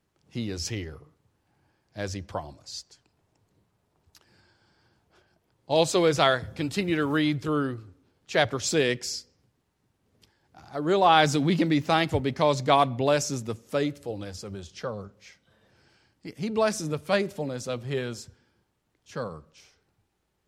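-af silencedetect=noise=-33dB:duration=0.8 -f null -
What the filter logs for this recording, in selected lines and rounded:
silence_start: 0.96
silence_end: 1.98 | silence_duration: 1.02
silence_start: 2.80
silence_end: 5.70 | silence_duration: 2.90
silence_start: 9.19
silence_end: 10.74 | silence_duration: 1.55
silence_start: 15.05
silence_end: 16.25 | silence_duration: 1.20
silence_start: 18.21
silence_end: 19.16 | silence_duration: 0.94
silence_start: 19.37
silence_end: 20.48 | silence_duration: 1.10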